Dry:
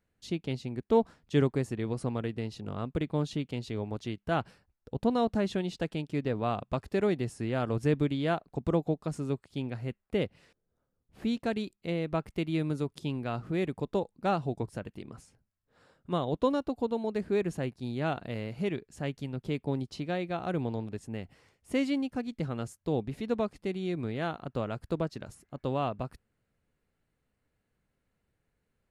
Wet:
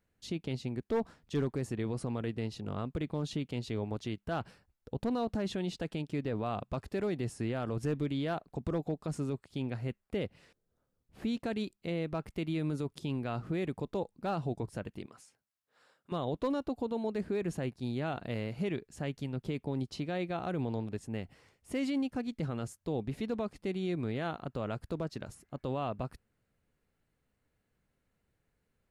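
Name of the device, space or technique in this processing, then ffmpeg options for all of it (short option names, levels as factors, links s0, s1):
clipper into limiter: -filter_complex "[0:a]asoftclip=type=hard:threshold=0.119,alimiter=level_in=1.06:limit=0.0631:level=0:latency=1:release=18,volume=0.944,asettb=1/sr,asplit=3[s0][s1][s2];[s0]atrim=end=15.064[s3];[s1]atrim=start=15.06:end=16.12,asetpts=PTS-STARTPTS,afade=t=in:d=0.004:c=qsin,afade=t=out:st=1.056:d=0.004:c=qsin,highpass=f=1000:p=1[s4];[s2]atrim=start=16.116[s5];[s3][s4]acrossfade=d=0.004:c1=hsin:c2=qsin[s6];[s6][s5]acrossfade=d=0.004:c1=qsin:c2=hsin"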